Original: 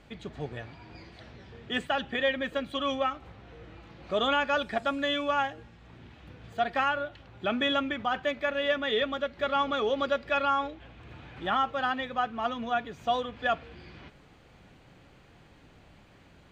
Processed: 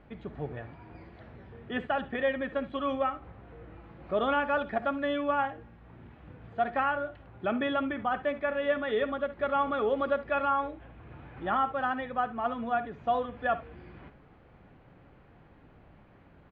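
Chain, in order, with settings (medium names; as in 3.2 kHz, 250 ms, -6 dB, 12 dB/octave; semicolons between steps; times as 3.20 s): low-pass 1.7 kHz 12 dB/octave; early reflections 56 ms -17 dB, 70 ms -17 dB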